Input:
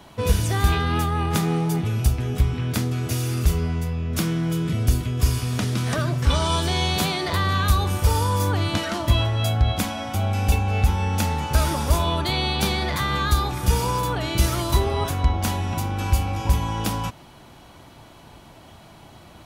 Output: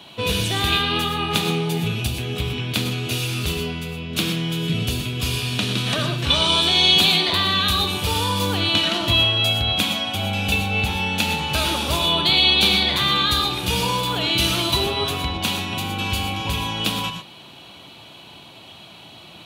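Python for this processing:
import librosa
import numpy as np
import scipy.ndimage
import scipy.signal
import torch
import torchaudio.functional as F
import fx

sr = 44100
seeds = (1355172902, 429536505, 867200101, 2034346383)

y = scipy.signal.sosfilt(scipy.signal.butter(2, 120.0, 'highpass', fs=sr, output='sos'), x)
y = fx.band_shelf(y, sr, hz=3200.0, db=11.5, octaves=1.0)
y = fx.rev_gated(y, sr, seeds[0], gate_ms=140, shape='rising', drr_db=5.5)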